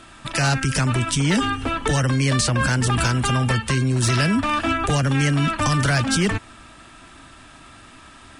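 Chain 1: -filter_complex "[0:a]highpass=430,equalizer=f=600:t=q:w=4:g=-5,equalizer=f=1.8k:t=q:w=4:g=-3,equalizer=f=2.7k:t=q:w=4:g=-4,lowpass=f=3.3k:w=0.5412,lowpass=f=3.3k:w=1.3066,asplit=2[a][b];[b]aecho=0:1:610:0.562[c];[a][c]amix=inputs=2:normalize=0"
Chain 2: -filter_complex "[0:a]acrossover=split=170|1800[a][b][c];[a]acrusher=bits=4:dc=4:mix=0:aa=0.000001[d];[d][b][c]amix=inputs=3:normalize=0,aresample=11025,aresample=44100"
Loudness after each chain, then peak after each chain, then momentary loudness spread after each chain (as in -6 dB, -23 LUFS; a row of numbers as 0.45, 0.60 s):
-25.5, -22.0 LUFS; -11.0, -7.5 dBFS; 5, 3 LU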